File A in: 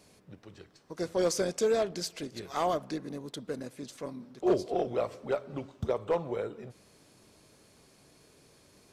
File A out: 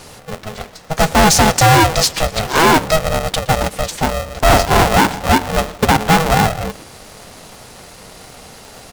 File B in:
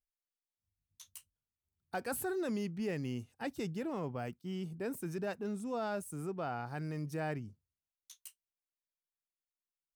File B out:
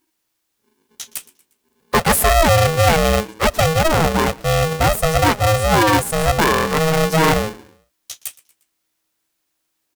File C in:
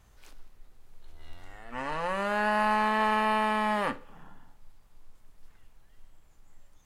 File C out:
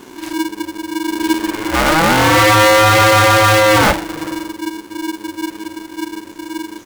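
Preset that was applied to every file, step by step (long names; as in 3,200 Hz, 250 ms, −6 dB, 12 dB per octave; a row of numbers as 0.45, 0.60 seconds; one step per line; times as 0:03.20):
gain into a clipping stage and back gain 29.5 dB
echo with shifted repeats 118 ms, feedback 46%, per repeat −120 Hz, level −22 dB
ring modulator with a square carrier 320 Hz
normalise the peak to −6 dBFS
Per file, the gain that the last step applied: +22.0, +22.5, +21.5 decibels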